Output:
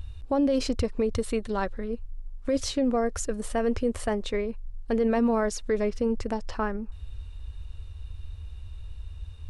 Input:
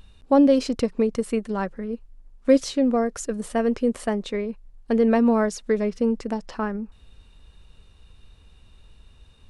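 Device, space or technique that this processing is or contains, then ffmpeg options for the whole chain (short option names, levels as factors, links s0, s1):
car stereo with a boomy subwoofer: -filter_complex "[0:a]lowshelf=f=120:t=q:w=3:g=10,alimiter=limit=0.141:level=0:latency=1:release=35,asettb=1/sr,asplit=3[s0][s1][s2];[s0]atrim=end=1.134[s3];[s1]atrim=start=1.13:end=1.89,asetpts=PTS-STARTPTS,afade=t=in:d=0.004:c=qsin,afade=t=out:st=0.756:d=0.004:c=qsin,equalizer=f=3800:w=3.5:g=8.5[s4];[s2]atrim=start=1.886[s5];[s3][s4]acrossfade=d=0.004:c1=hsin:c2=qsin[s6];[s6][s5]acrossfade=d=0.004:c1=qsin:c2=hsin"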